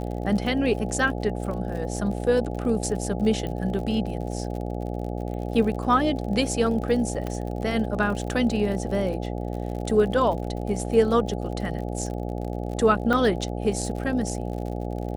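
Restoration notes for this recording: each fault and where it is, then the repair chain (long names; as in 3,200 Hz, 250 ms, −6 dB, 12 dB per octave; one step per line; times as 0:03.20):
mains buzz 60 Hz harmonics 14 −30 dBFS
surface crackle 47 per second −33 dBFS
0:03.47: click −20 dBFS
0:07.27: click −17 dBFS
0:13.13: drop-out 3.5 ms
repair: click removal
hum removal 60 Hz, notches 14
repair the gap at 0:13.13, 3.5 ms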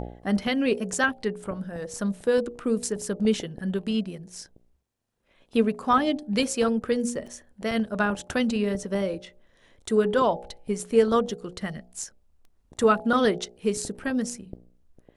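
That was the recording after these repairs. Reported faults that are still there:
0:07.27: click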